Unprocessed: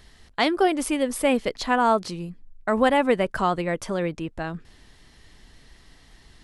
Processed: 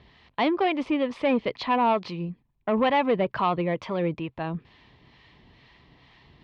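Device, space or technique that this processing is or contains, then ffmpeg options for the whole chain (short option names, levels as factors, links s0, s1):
guitar amplifier with harmonic tremolo: -filter_complex "[0:a]acrossover=split=740[s0][s1];[s0]aeval=exprs='val(0)*(1-0.5/2+0.5/2*cos(2*PI*2.2*n/s))':c=same[s2];[s1]aeval=exprs='val(0)*(1-0.5/2-0.5/2*cos(2*PI*2.2*n/s))':c=same[s3];[s2][s3]amix=inputs=2:normalize=0,asoftclip=type=tanh:threshold=0.126,highpass=79,equalizer=f=130:t=q:w=4:g=6,equalizer=f=1000:t=q:w=4:g=6,equalizer=f=1500:t=q:w=4:g=-7,equalizer=f=2400:t=q:w=4:g=4,lowpass=f=3800:w=0.5412,lowpass=f=3800:w=1.3066,volume=1.26"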